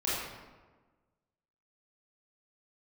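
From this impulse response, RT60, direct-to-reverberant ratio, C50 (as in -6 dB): 1.3 s, -9.5 dB, -2.0 dB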